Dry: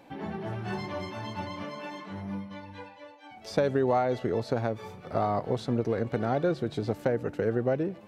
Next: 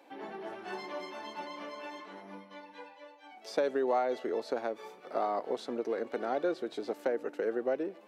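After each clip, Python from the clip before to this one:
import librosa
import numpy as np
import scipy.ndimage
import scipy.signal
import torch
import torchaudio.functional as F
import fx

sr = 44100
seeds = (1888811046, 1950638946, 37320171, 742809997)

y = scipy.signal.sosfilt(scipy.signal.butter(4, 290.0, 'highpass', fs=sr, output='sos'), x)
y = F.gain(torch.from_numpy(y), -3.5).numpy()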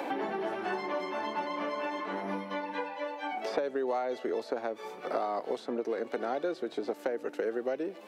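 y = fx.band_squash(x, sr, depth_pct=100)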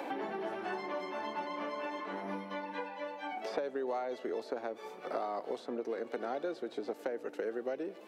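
y = fx.echo_filtered(x, sr, ms=107, feedback_pct=83, hz=2000.0, wet_db=-22.0)
y = F.gain(torch.from_numpy(y), -4.5).numpy()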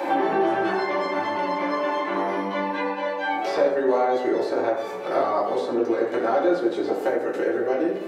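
y = fx.rev_fdn(x, sr, rt60_s=0.98, lf_ratio=1.0, hf_ratio=0.5, size_ms=52.0, drr_db=-6.0)
y = F.gain(torch.from_numpy(y), 7.5).numpy()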